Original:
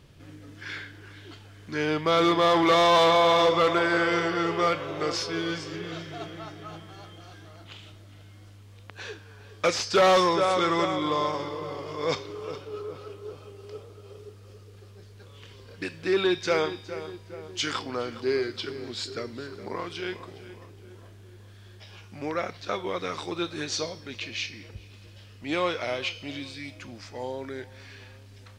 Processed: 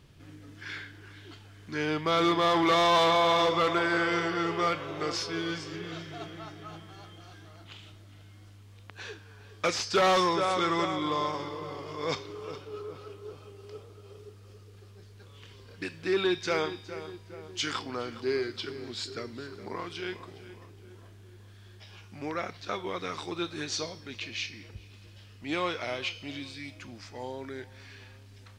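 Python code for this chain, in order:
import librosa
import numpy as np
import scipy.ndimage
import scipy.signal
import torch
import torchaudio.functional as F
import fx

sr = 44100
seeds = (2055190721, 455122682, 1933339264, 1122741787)

y = fx.peak_eq(x, sr, hz=540.0, db=-4.0, octaves=0.46)
y = F.gain(torch.from_numpy(y), -2.5).numpy()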